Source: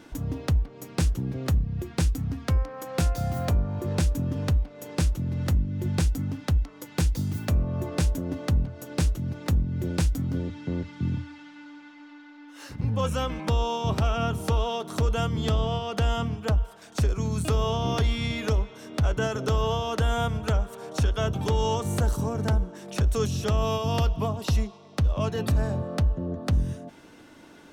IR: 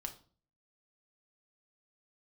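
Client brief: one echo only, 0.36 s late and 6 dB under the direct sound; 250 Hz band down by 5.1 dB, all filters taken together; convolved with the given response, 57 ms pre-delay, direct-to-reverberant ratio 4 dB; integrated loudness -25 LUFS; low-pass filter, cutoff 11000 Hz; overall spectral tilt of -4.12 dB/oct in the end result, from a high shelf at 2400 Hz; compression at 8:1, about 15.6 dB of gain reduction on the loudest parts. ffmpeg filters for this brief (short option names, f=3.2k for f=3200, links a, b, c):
-filter_complex "[0:a]lowpass=11k,equalizer=f=250:t=o:g=-8,highshelf=f=2.4k:g=9,acompressor=threshold=-36dB:ratio=8,aecho=1:1:360:0.501,asplit=2[a][b];[1:a]atrim=start_sample=2205,adelay=57[c];[b][c]afir=irnorm=-1:irlink=0,volume=-1.5dB[d];[a][d]amix=inputs=2:normalize=0,volume=12.5dB"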